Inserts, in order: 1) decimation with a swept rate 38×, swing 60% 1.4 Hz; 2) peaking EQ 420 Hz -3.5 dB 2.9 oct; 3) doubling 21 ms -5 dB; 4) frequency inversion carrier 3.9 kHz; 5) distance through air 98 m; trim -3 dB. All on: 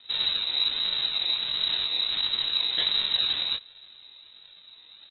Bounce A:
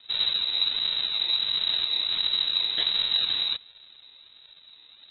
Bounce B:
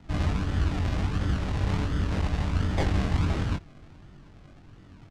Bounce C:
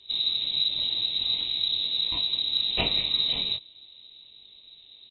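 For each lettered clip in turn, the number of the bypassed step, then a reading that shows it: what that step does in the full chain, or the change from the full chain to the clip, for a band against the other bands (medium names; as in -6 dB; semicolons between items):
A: 3, 4 kHz band +2.0 dB; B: 4, 4 kHz band -30.5 dB; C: 1, distortion -6 dB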